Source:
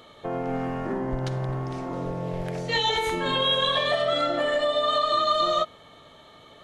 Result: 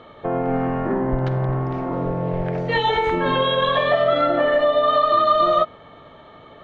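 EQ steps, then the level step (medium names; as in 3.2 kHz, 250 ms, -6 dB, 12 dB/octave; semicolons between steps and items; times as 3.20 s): low-pass 2 kHz 12 dB/octave; +7.0 dB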